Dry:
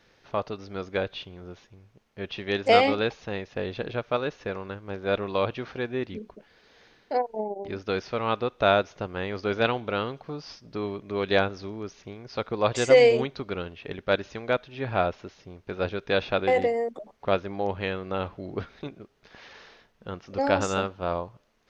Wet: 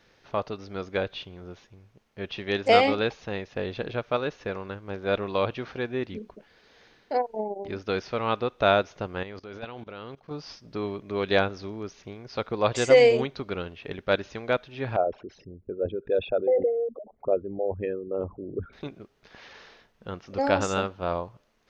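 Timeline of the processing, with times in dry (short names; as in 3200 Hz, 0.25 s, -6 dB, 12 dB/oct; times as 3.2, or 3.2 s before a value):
9.23–10.31 level quantiser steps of 20 dB
14.96–18.73 formant sharpening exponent 3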